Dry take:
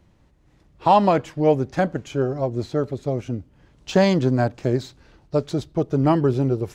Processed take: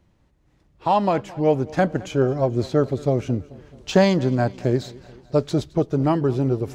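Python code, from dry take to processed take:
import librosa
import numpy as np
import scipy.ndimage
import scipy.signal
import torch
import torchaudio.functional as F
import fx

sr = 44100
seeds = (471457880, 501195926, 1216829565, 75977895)

y = fx.rider(x, sr, range_db=4, speed_s=0.5)
y = fx.echo_feedback(y, sr, ms=216, feedback_pct=59, wet_db=-21.5)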